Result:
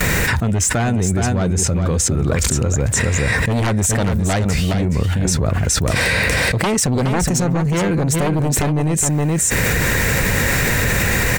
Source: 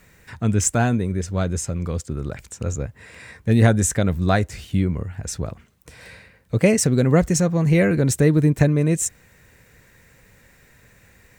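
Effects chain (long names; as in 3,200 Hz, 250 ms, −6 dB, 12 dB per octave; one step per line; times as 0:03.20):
noise gate with hold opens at −46 dBFS
sine wavefolder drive 10 dB, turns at −3.5 dBFS
single-tap delay 418 ms −7.5 dB
envelope flattener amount 100%
level −13 dB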